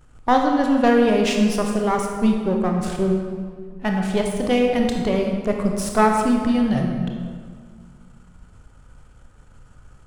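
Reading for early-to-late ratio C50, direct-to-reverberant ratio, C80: 3.0 dB, 1.5 dB, 4.5 dB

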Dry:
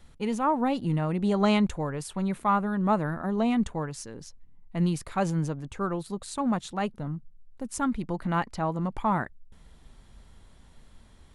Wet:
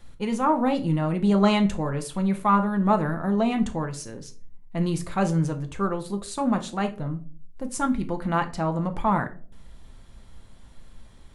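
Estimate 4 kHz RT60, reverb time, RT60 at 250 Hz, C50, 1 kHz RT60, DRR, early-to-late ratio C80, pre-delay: 0.25 s, 0.45 s, 0.60 s, 14.5 dB, 0.35 s, 5.5 dB, 20.0 dB, 6 ms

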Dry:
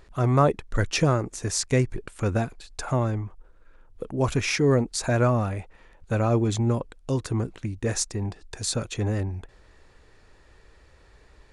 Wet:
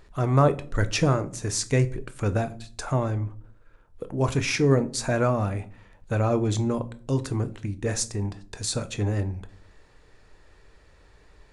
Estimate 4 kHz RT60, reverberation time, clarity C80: 0.30 s, 0.50 s, 23.0 dB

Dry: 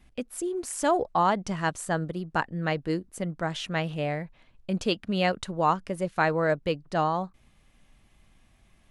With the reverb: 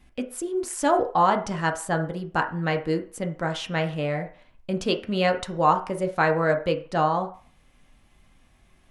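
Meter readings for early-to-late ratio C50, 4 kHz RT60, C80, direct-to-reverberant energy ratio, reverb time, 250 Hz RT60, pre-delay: 12.5 dB, 0.40 s, 17.0 dB, 4.0 dB, 0.40 s, 0.30 s, 3 ms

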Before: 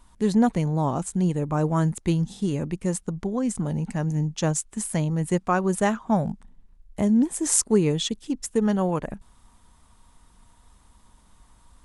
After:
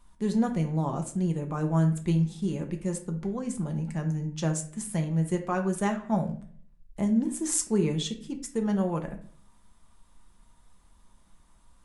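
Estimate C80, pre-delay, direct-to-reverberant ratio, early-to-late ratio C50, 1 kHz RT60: 15.0 dB, 5 ms, 3.5 dB, 10.5 dB, 0.45 s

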